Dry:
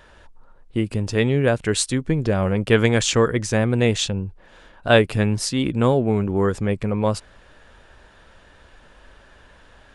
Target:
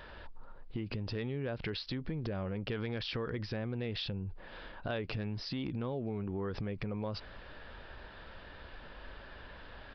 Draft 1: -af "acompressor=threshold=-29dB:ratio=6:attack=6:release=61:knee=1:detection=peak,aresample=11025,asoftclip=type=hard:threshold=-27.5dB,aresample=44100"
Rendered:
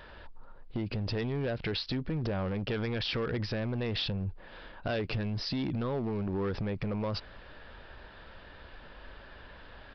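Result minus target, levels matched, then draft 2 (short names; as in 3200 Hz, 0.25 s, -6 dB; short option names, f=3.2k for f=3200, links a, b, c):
compressor: peak gain reduction -6.5 dB
-af "acompressor=threshold=-36.5dB:ratio=6:attack=6:release=61:knee=1:detection=peak,aresample=11025,asoftclip=type=hard:threshold=-27.5dB,aresample=44100"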